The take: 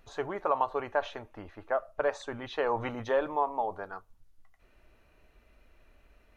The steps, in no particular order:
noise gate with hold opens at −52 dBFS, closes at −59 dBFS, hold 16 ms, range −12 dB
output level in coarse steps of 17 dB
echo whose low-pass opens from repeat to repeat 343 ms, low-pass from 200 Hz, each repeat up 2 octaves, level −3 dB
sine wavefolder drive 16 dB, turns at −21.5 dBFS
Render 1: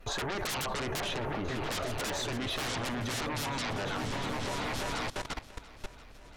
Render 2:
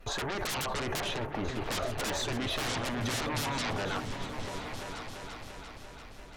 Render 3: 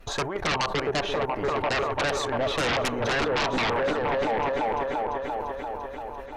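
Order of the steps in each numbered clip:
noise gate with hold, then sine wavefolder, then echo whose low-pass opens from repeat to repeat, then output level in coarse steps
noise gate with hold, then sine wavefolder, then output level in coarse steps, then echo whose low-pass opens from repeat to repeat
noise gate with hold, then output level in coarse steps, then echo whose low-pass opens from repeat to repeat, then sine wavefolder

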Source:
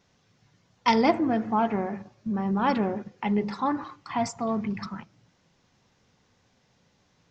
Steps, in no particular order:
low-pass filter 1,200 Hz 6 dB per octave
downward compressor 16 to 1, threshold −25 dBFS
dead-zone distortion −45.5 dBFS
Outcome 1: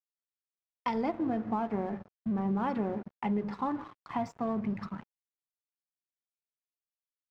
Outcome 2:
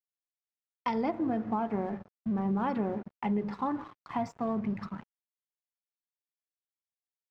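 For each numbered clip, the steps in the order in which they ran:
downward compressor, then dead-zone distortion, then low-pass filter
dead-zone distortion, then downward compressor, then low-pass filter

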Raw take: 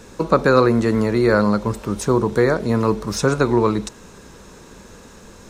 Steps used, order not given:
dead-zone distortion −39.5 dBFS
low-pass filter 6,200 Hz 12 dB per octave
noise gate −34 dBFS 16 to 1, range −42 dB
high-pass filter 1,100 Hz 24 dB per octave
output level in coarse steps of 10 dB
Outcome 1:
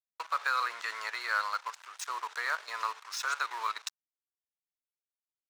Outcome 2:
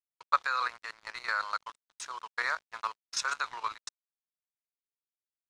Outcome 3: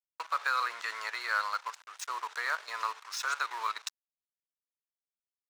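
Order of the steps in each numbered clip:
noise gate, then output level in coarse steps, then low-pass filter, then dead-zone distortion, then high-pass filter
high-pass filter, then noise gate, then dead-zone distortion, then low-pass filter, then output level in coarse steps
output level in coarse steps, then low-pass filter, then noise gate, then dead-zone distortion, then high-pass filter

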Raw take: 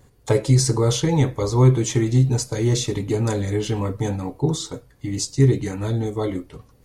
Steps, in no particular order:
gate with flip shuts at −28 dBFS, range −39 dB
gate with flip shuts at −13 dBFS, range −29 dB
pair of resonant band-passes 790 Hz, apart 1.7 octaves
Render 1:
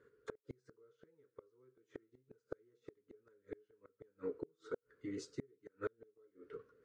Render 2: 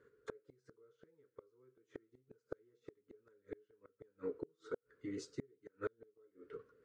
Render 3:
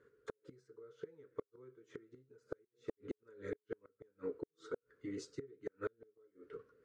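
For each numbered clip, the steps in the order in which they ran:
pair of resonant band-passes, then second gate with flip, then first gate with flip
pair of resonant band-passes, then first gate with flip, then second gate with flip
second gate with flip, then pair of resonant band-passes, then first gate with flip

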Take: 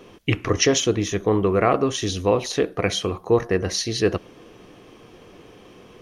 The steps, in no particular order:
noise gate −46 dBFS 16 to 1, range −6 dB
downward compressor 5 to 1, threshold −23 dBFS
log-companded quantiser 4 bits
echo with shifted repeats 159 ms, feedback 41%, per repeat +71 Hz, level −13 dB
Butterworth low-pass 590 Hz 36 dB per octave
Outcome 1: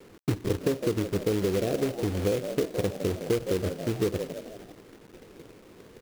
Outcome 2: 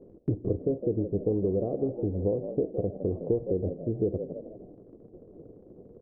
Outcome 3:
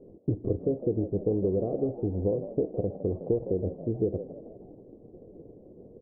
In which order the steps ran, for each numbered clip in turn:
Butterworth low-pass, then echo with shifted repeats, then noise gate, then log-companded quantiser, then downward compressor
echo with shifted repeats, then log-companded quantiser, then downward compressor, then Butterworth low-pass, then noise gate
noise gate, then log-companded quantiser, then downward compressor, then Butterworth low-pass, then echo with shifted repeats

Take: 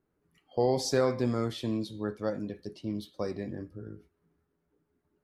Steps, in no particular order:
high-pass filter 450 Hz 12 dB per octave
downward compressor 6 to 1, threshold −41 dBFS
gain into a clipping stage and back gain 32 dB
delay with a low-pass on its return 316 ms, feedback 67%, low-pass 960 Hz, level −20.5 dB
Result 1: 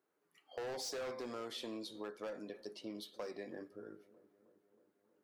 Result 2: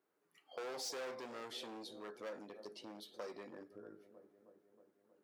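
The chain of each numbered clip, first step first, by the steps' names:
high-pass filter, then gain into a clipping stage and back, then downward compressor, then delay with a low-pass on its return
delay with a low-pass on its return, then gain into a clipping stage and back, then downward compressor, then high-pass filter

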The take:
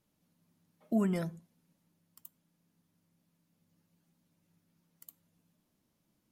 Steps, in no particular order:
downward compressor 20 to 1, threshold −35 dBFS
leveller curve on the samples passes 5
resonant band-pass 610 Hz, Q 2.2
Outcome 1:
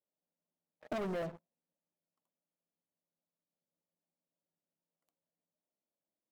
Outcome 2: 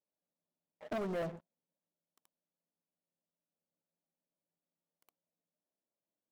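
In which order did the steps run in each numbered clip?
resonant band-pass, then leveller curve on the samples, then downward compressor
downward compressor, then resonant band-pass, then leveller curve on the samples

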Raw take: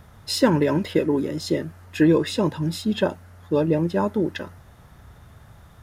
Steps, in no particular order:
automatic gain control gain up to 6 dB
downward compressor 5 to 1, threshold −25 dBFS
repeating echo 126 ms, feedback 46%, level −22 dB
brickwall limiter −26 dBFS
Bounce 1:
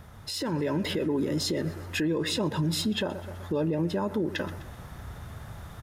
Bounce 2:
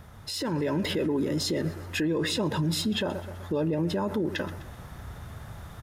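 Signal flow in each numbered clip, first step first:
repeating echo, then downward compressor, then brickwall limiter, then automatic gain control
repeating echo, then brickwall limiter, then downward compressor, then automatic gain control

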